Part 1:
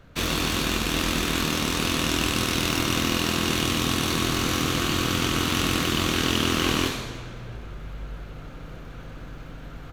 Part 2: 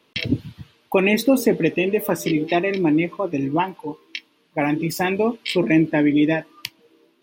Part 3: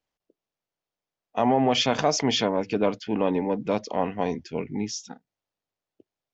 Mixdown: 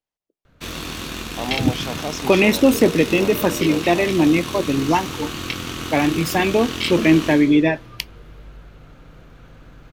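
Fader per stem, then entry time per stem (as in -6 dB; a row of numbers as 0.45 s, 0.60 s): -5.0 dB, +2.5 dB, -6.5 dB; 0.45 s, 1.35 s, 0.00 s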